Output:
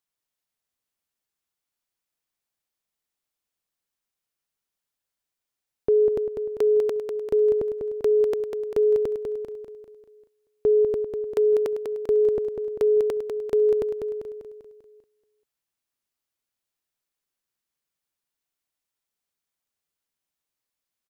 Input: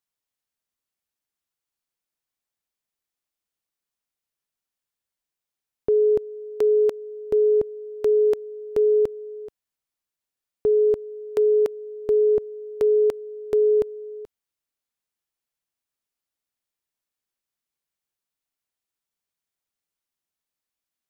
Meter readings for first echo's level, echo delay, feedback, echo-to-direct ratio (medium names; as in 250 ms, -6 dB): -5.5 dB, 197 ms, 49%, -4.5 dB